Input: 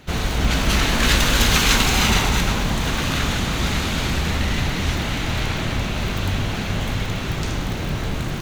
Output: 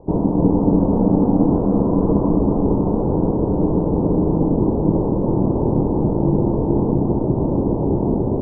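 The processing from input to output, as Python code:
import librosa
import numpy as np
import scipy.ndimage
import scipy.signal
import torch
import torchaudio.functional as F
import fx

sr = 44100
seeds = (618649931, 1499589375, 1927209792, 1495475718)

p1 = fx.rider(x, sr, range_db=3, speed_s=0.5)
p2 = x + (p1 * librosa.db_to_amplitude(-1.0))
p3 = scipy.signal.sosfilt(scipy.signal.ellip(4, 1.0, 60, 700.0, 'lowpass', fs=sr, output='sos'), p2)
p4 = p3 * np.sin(2.0 * np.pi * 240.0 * np.arange(len(p3)) / sr)
p5 = p4 + 10.0 ** (-8.5 / 20.0) * np.pad(p4, (int(284 * sr / 1000.0), 0))[:len(p4)]
y = p5 * librosa.db_to_amplitude(2.0)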